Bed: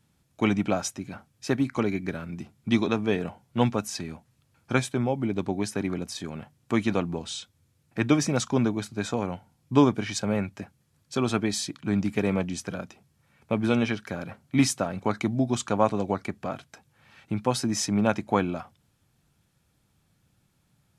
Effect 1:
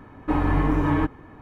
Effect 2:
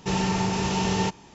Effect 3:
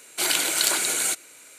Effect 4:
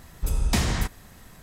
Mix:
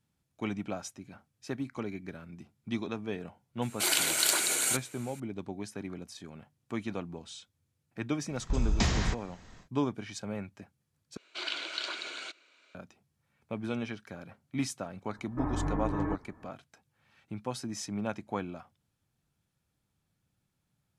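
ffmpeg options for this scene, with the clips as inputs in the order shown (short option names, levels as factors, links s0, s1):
-filter_complex "[3:a]asplit=2[s0][s1];[0:a]volume=0.282[s2];[4:a]aresample=16000,aresample=44100[s3];[s1]highpass=390,equalizer=f=470:t=q:w=4:g=-7,equalizer=f=820:t=q:w=4:g=-9,equalizer=f=1900:t=q:w=4:g=-7,lowpass=f=4200:w=0.5412,lowpass=f=4200:w=1.3066[s4];[1:a]lowpass=f=1800:w=0.5412,lowpass=f=1800:w=1.3066[s5];[s2]asplit=2[s6][s7];[s6]atrim=end=11.174[s8];[s4]atrim=end=1.58,asetpts=PTS-STARTPTS,volume=0.398[s9];[s7]atrim=start=12.746[s10];[s0]atrim=end=1.58,asetpts=PTS-STARTPTS,volume=0.596,afade=t=in:d=0.004:c=hsin,afade=t=out:st=1.576:d=0.004:c=hsin,adelay=3620[s11];[s3]atrim=end=1.42,asetpts=PTS-STARTPTS,volume=0.631,afade=t=in:d=0.1,afade=t=out:st=1.32:d=0.1,adelay=8270[s12];[s5]atrim=end=1.41,asetpts=PTS-STARTPTS,volume=0.282,afade=t=in:d=0.004:c=hsin,afade=t=out:st=1.406:d=0.004:c=hsin,adelay=15090[s13];[s8][s9]acrossfade=d=0.004:c1=hsin:c2=hsin[s14];[s14][s10]acrossfade=d=0.004:c1=hsin:c2=hsin[s15];[s15][s11][s12][s13]amix=inputs=4:normalize=0"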